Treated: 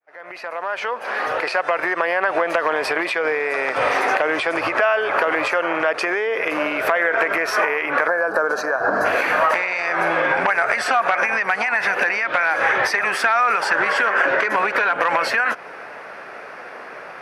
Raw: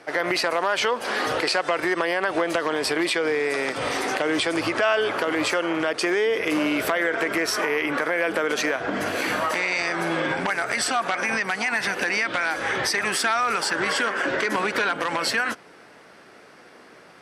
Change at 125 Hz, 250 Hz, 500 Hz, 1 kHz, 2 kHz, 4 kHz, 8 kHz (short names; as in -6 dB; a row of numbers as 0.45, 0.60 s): -4.0, -4.0, +3.0, +6.5, +5.5, -4.0, -6.5 dB